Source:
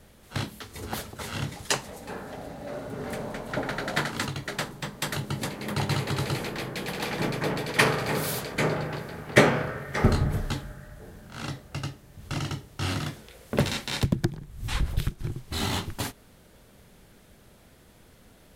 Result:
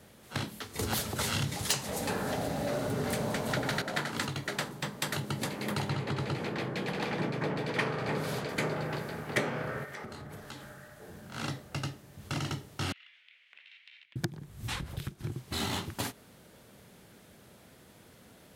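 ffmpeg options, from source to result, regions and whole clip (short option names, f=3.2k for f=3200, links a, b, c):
-filter_complex "[0:a]asettb=1/sr,asplit=3[a][b][c];[a]atrim=end=0.794[d];[b]atrim=start=0.79:end=3.82,asetpts=PTS-STARTPTS,afade=t=in:d=0.004:c=qsin,afade=t=out:st=3.026:d=0.004:c=qsin,acrossover=split=150|3000[e][f][g];[f]acompressor=threshold=-50dB:ratio=1.5:attack=3.2:release=140:knee=2.83:detection=peak[h];[e][h][g]amix=inputs=3:normalize=0,aeval=exprs='0.316*sin(PI/2*3.16*val(0)/0.316)':c=same[i];[c]atrim=start=3.816[j];[d][i]acrossfade=d=0.004:c1=hsin:c2=qsin[k];[k][j]acrossfade=d=0.004:c1=qsin:c2=hsin,asettb=1/sr,asplit=3[l][m][n];[l]atrim=end=5.894[o];[m]atrim=start=5.89:end=8.49,asetpts=PTS-STARTPTS,afade=t=in:d=0.004:c=qsin,afade=t=out:st=2.596:d=0.004:c=qsin,highpass=f=250:p=1,aemphasis=mode=reproduction:type=bsi[p];[n]atrim=start=8.486[q];[o][p]acrossfade=d=0.004:c1=hsin:c2=qsin[r];[r][q]acrossfade=d=0.004:c1=qsin:c2=hsin,asettb=1/sr,asplit=3[s][t][u];[s]atrim=end=9.844[v];[t]atrim=start=9.84:end=11.09,asetpts=PTS-STARTPTS,afade=t=in:d=0.004:c=qsin,afade=t=out:st=1.246:d=0.004:c=qsin,lowshelf=f=260:g=-9.5,acompressor=threshold=-40dB:ratio=6:attack=3.2:release=140:knee=1:detection=peak[w];[u]atrim=start=11.086[x];[v][w]acrossfade=d=0.004:c1=hsin:c2=qsin[y];[y][x]acrossfade=d=0.004:c1=qsin:c2=hsin,asettb=1/sr,asplit=3[z][aa][ab];[z]atrim=end=12.924[ac];[aa]atrim=start=12.92:end=14.16,asetpts=PTS-STARTPTS,afade=t=in:d=0.004:c=qsin,afade=t=out:st=1.236:d=0.004:c=qsin,asuperpass=centerf=2500:order=4:qfactor=2.1,acompressor=threshold=-51dB:ratio=12:attack=3.2:release=140:knee=1:detection=peak[ad];[ab]atrim=start=14.156[ae];[ac][ad]acrossfade=d=0.004:c1=hsin:c2=qsin[af];[af][ae]acrossfade=d=0.004:c1=qsin:c2=hsin,acompressor=threshold=-29dB:ratio=4,highpass=98"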